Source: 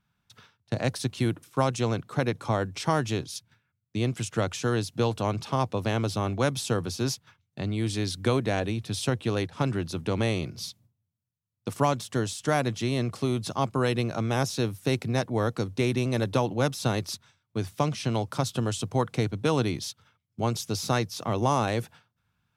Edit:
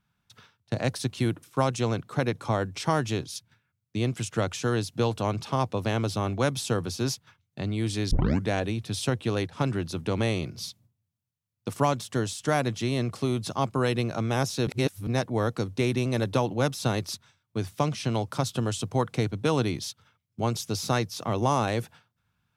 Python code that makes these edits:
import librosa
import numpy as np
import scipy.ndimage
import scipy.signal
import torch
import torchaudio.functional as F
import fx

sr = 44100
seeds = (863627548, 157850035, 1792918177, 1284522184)

y = fx.edit(x, sr, fx.tape_start(start_s=8.11, length_s=0.37),
    fx.reverse_span(start_s=14.67, length_s=0.4), tone=tone)